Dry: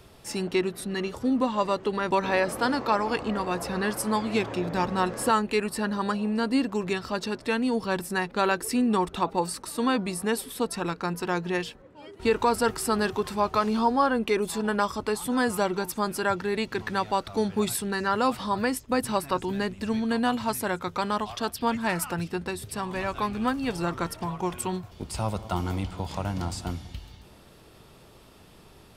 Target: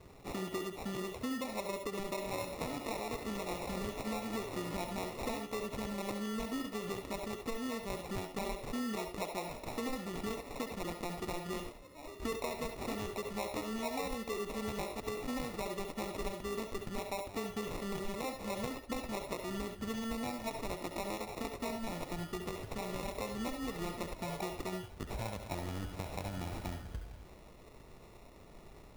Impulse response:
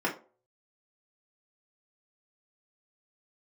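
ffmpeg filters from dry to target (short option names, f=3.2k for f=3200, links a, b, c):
-filter_complex "[0:a]acrusher=samples=28:mix=1:aa=0.000001,asubboost=boost=2:cutoff=62,acompressor=threshold=-32dB:ratio=6,asplit=2[a][b];[b]aemphasis=mode=production:type=50fm[c];[1:a]atrim=start_sample=2205,asetrate=83790,aresample=44100,adelay=67[d];[c][d]afir=irnorm=-1:irlink=0,volume=-12dB[e];[a][e]amix=inputs=2:normalize=0,volume=-4dB"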